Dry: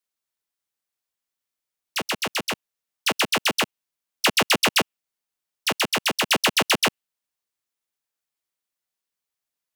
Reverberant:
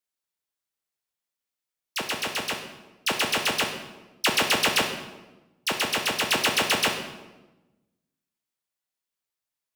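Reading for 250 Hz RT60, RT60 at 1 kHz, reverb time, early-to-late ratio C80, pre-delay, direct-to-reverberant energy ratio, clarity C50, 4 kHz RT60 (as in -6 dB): 1.4 s, 1.0 s, 1.1 s, 9.0 dB, 19 ms, 4.0 dB, 7.0 dB, 0.80 s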